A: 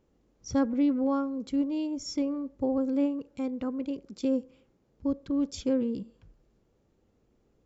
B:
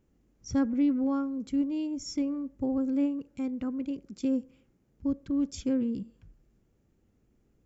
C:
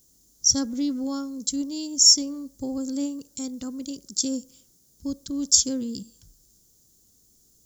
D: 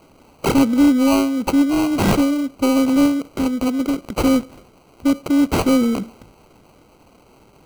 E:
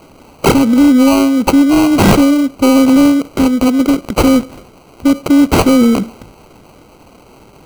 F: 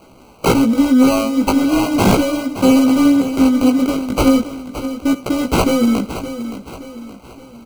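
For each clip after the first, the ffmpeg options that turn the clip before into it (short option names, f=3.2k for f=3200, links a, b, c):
-af "equalizer=f=500:t=o:w=1:g=-7,equalizer=f=1k:t=o:w=1:g=-6,equalizer=f=4k:t=o:w=1:g=-7,volume=2dB"
-af "aexciter=amount=13.4:drive=9:freq=3.9k,volume=-1dB"
-filter_complex "[0:a]asplit=2[a][b];[b]highpass=f=720:p=1,volume=27dB,asoftclip=type=tanh:threshold=-1.5dB[c];[a][c]amix=inputs=2:normalize=0,lowpass=f=1.7k:p=1,volume=-6dB,acrossover=split=370[d][e];[e]acrusher=samples=25:mix=1:aa=0.000001[f];[d][f]amix=inputs=2:normalize=0,volume=2dB"
-af "alimiter=level_in=10dB:limit=-1dB:release=50:level=0:latency=1,volume=-1dB"
-af "flanger=delay=15.5:depth=4.3:speed=0.39,asuperstop=centerf=1800:order=8:qfactor=4.1,aecho=1:1:571|1142|1713|2284:0.266|0.117|0.0515|0.0227,volume=-1dB"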